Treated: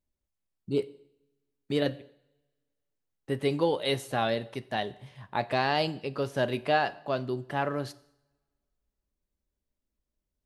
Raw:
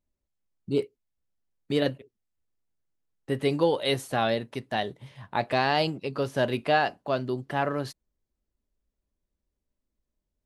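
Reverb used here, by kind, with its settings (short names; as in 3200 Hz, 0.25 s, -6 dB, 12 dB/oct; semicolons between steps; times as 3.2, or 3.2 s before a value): two-slope reverb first 0.72 s, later 1.9 s, from -23 dB, DRR 16 dB; gain -2.5 dB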